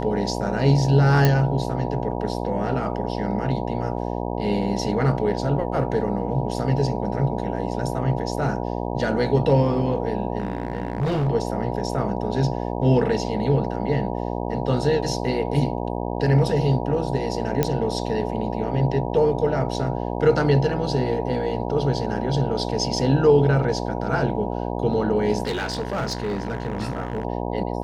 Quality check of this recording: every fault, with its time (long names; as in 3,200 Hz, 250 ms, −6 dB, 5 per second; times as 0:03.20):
mains buzz 60 Hz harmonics 16 −27 dBFS
0:01.25: click −5 dBFS
0:10.38–0:11.29: clipping −19.5 dBFS
0:17.63: click −6 dBFS
0:25.43–0:27.25: clipping −21.5 dBFS